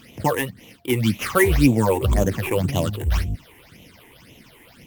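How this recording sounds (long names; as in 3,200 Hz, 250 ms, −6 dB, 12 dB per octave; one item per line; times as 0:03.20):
aliases and images of a low sample rate 8,100 Hz, jitter 20%
phaser sweep stages 8, 1.9 Hz, lowest notch 170–1,500 Hz
Opus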